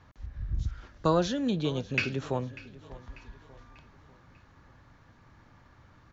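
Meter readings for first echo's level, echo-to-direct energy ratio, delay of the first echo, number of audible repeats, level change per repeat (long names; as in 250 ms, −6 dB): −19.0 dB, −18.0 dB, 593 ms, 3, −6.5 dB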